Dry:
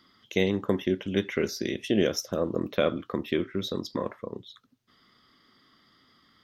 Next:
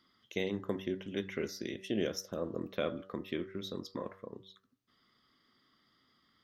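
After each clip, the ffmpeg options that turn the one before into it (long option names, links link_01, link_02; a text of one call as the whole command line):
ffmpeg -i in.wav -af "bandreject=frequency=95.87:width_type=h:width=4,bandreject=frequency=191.74:width_type=h:width=4,bandreject=frequency=287.61:width_type=h:width=4,bandreject=frequency=383.48:width_type=h:width=4,bandreject=frequency=479.35:width_type=h:width=4,bandreject=frequency=575.22:width_type=h:width=4,bandreject=frequency=671.09:width_type=h:width=4,bandreject=frequency=766.96:width_type=h:width=4,bandreject=frequency=862.83:width_type=h:width=4,bandreject=frequency=958.7:width_type=h:width=4,bandreject=frequency=1054.57:width_type=h:width=4,bandreject=frequency=1150.44:width_type=h:width=4,bandreject=frequency=1246.31:width_type=h:width=4,bandreject=frequency=1342.18:width_type=h:width=4,bandreject=frequency=1438.05:width_type=h:width=4,bandreject=frequency=1533.92:width_type=h:width=4,bandreject=frequency=1629.79:width_type=h:width=4,bandreject=frequency=1725.66:width_type=h:width=4,bandreject=frequency=1821.53:width_type=h:width=4,bandreject=frequency=1917.4:width_type=h:width=4,bandreject=frequency=2013.27:width_type=h:width=4,volume=-9dB" out.wav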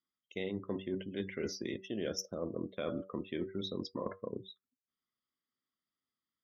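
ffmpeg -i in.wav -af "afftdn=noise_reduction=33:noise_floor=-48,areverse,acompressor=threshold=-43dB:ratio=6,areverse,volume=8.5dB" out.wav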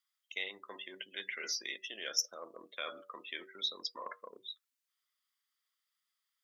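ffmpeg -i in.wav -af "highpass=1400,volume=8dB" out.wav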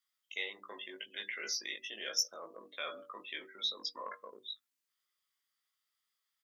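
ffmpeg -i in.wav -filter_complex "[0:a]bandreject=frequency=50:width_type=h:width=6,bandreject=frequency=100:width_type=h:width=6,bandreject=frequency=150:width_type=h:width=6,bandreject=frequency=200:width_type=h:width=6,bandreject=frequency=250:width_type=h:width=6,bandreject=frequency=300:width_type=h:width=6,asplit=2[link_01][link_02];[link_02]adelay=19,volume=-3dB[link_03];[link_01][link_03]amix=inputs=2:normalize=0,volume=-1.5dB" out.wav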